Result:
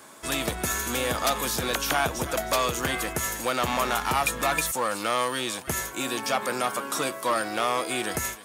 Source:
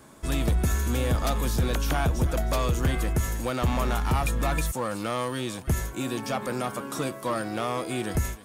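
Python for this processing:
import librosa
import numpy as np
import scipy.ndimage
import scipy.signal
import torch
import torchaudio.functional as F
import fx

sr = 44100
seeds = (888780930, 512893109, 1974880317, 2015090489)

y = fx.highpass(x, sr, hz=800.0, slope=6)
y = F.gain(torch.from_numpy(y), 7.0).numpy()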